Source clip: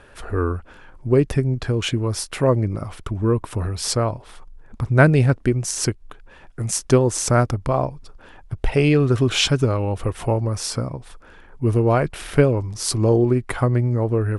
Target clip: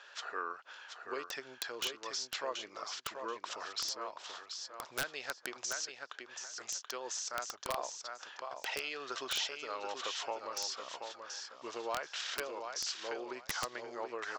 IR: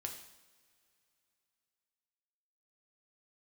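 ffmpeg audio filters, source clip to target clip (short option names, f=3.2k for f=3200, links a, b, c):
-af "aderivative,aresample=16000,volume=17.5dB,asoftclip=hard,volume=-17.5dB,aresample=44100,acompressor=threshold=-42dB:ratio=6,highpass=550,lowpass=4.3k,equalizer=f=2.3k:t=o:w=0.53:g=-6.5,aecho=1:1:731|1462|2193:0.473|0.0994|0.0209,aeval=exprs='(mod(59.6*val(0)+1,2)-1)/59.6':c=same,volume=11dB"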